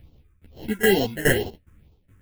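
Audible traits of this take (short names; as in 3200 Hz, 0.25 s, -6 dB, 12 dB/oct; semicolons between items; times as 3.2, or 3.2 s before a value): aliases and images of a low sample rate 1200 Hz, jitter 0%; phasing stages 4, 2.2 Hz, lowest notch 700–1700 Hz; tremolo saw down 2.4 Hz, depth 90%; a shimmering, thickened sound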